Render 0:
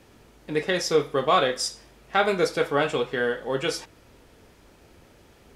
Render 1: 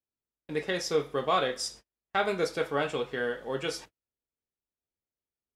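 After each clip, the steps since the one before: gate -40 dBFS, range -40 dB; trim -6 dB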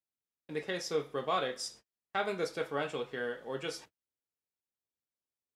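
high-pass 83 Hz 12 dB/octave; trim -5.5 dB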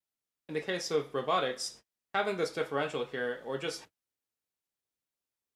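vibrato 0.67 Hz 25 cents; trim +2.5 dB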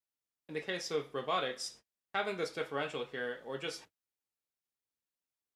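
dynamic bell 2.7 kHz, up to +4 dB, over -46 dBFS, Q 0.91; trim -5 dB

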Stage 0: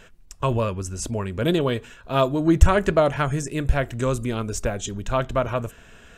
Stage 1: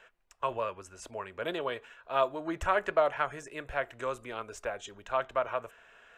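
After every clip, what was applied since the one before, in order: three-band isolator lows -22 dB, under 490 Hz, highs -13 dB, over 2.9 kHz; trim -4.5 dB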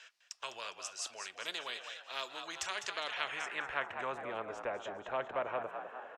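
frequency-shifting echo 204 ms, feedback 44%, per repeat +63 Hz, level -12 dB; band-pass sweep 5.1 kHz -> 600 Hz, 2.87–4.28 s; spectrum-flattening compressor 2:1; trim +3.5 dB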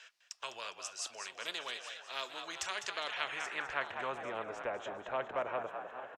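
delay 836 ms -15 dB

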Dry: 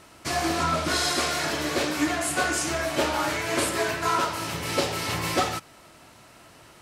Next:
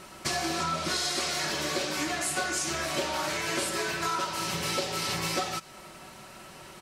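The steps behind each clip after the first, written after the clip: comb 5.3 ms, depth 53%; dynamic bell 5.2 kHz, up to +5 dB, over -43 dBFS, Q 0.78; compression 4:1, threshold -32 dBFS, peak gain reduction 13.5 dB; trim +3 dB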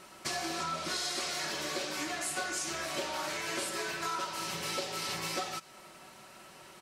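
bass shelf 140 Hz -9.5 dB; trim -5 dB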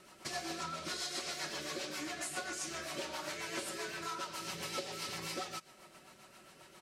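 rotary cabinet horn 7.5 Hz; trim -2.5 dB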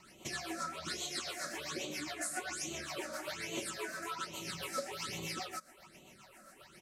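phase shifter stages 8, 1.2 Hz, lowest notch 110–1600 Hz; trim +3 dB

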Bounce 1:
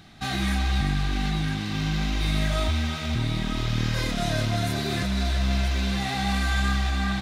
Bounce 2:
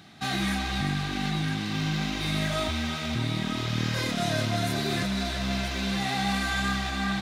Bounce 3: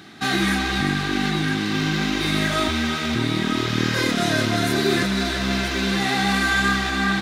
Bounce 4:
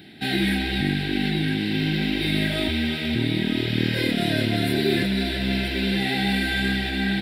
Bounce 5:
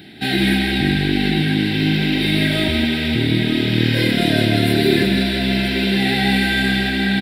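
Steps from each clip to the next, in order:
high-pass 120 Hz 12 dB/octave
FFT filter 150 Hz 0 dB, 380 Hz +11 dB, 620 Hz +1 dB, 1.6 kHz +8 dB, 2.4 kHz +4 dB; trim +2.5 dB
static phaser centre 2.8 kHz, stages 4
delay 162 ms -6 dB; trim +5 dB

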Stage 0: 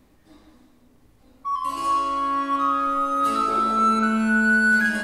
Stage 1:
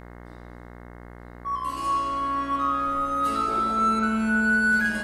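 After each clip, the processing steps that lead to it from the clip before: mains buzz 60 Hz, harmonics 36, -40 dBFS -4 dB/octave; trim -3 dB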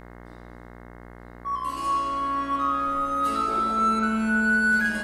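peaking EQ 90 Hz -13.5 dB 0.4 oct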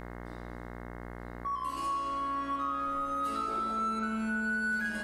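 compression 2.5:1, threshold -37 dBFS, peak gain reduction 12.5 dB; trim +1.5 dB

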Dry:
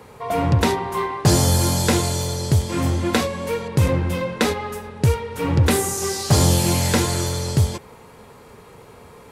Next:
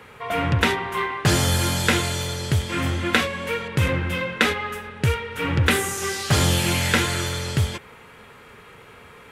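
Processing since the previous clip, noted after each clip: high-order bell 2.1 kHz +10 dB; trim -4 dB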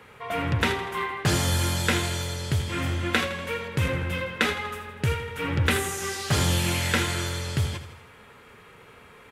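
feedback delay 81 ms, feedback 55%, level -12 dB; trim -4.5 dB

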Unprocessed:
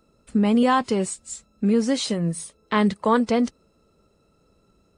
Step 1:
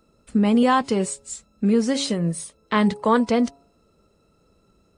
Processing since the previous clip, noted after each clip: de-hum 139.1 Hz, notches 7; trim +1 dB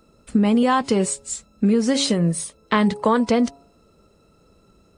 compression, threshold -19 dBFS, peak gain reduction 6.5 dB; trim +5 dB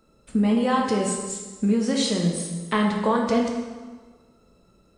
plate-style reverb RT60 1.4 s, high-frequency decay 0.8×, DRR 0 dB; trim -6 dB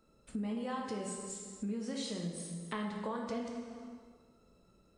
compression 2:1, threshold -35 dBFS, peak gain reduction 10.5 dB; trim -7.5 dB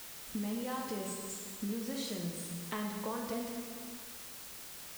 word length cut 8-bit, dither triangular

